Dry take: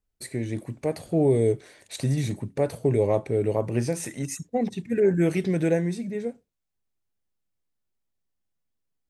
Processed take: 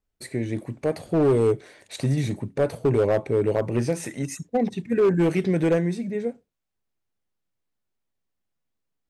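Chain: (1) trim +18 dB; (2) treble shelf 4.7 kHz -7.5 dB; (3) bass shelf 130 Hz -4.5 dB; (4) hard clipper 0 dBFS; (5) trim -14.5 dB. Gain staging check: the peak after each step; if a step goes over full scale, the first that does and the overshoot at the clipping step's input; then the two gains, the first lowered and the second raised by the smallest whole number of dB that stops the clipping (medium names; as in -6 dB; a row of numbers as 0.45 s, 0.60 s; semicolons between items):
+7.5 dBFS, +7.5 dBFS, +7.0 dBFS, 0.0 dBFS, -14.5 dBFS; step 1, 7.0 dB; step 1 +11 dB, step 5 -7.5 dB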